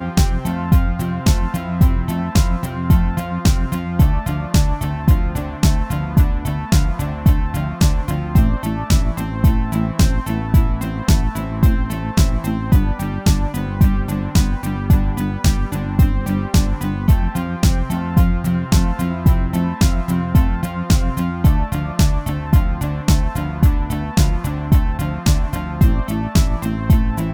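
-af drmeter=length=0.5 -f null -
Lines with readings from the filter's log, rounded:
Channel 1: DR: 8.1
Overall DR: 8.1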